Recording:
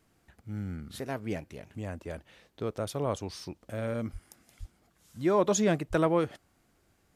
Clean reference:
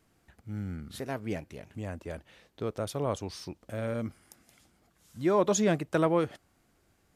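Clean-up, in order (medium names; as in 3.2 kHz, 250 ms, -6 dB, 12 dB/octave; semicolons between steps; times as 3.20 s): de-plosive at 4.12/4.59/5.89 s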